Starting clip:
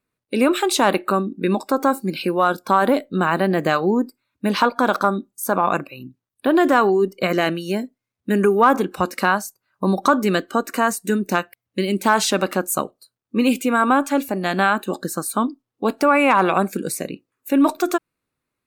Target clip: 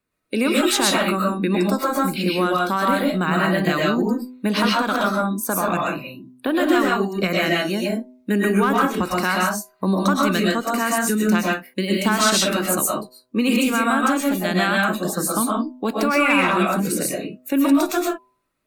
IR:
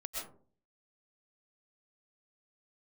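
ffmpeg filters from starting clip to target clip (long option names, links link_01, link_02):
-filter_complex "[1:a]atrim=start_sample=2205,afade=type=out:start_time=0.25:duration=0.01,atrim=end_sample=11466[link_01];[0:a][link_01]afir=irnorm=-1:irlink=0,acrossover=split=270|1500|5600[link_02][link_03][link_04][link_05];[link_03]acompressor=threshold=-29dB:ratio=5[link_06];[link_02][link_06][link_04][link_05]amix=inputs=4:normalize=0,bandreject=frequency=126.2:width_type=h:width=4,bandreject=frequency=252.4:width_type=h:width=4,bandreject=frequency=378.6:width_type=h:width=4,bandreject=frequency=504.8:width_type=h:width=4,bandreject=frequency=631:width_type=h:width=4,bandreject=frequency=757.2:width_type=h:width=4,bandreject=frequency=883.4:width_type=h:width=4,bandreject=frequency=1009.6:width_type=h:width=4,acontrast=26"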